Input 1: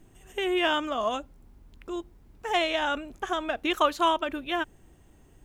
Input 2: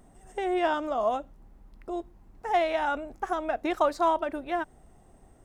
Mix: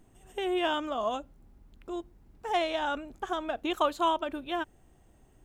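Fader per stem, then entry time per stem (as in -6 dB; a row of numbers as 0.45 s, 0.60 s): -6.0 dB, -10.0 dB; 0.00 s, 0.00 s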